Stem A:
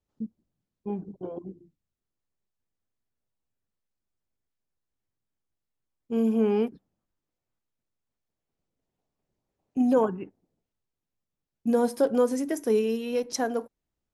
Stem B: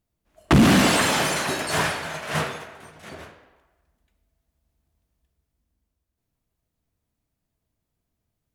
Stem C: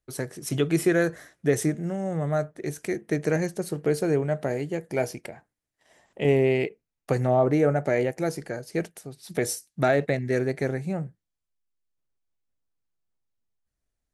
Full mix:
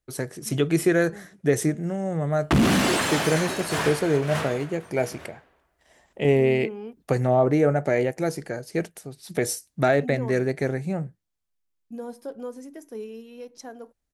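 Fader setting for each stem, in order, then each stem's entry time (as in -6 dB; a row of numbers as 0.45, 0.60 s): -12.5, -4.0, +1.5 dB; 0.25, 2.00, 0.00 s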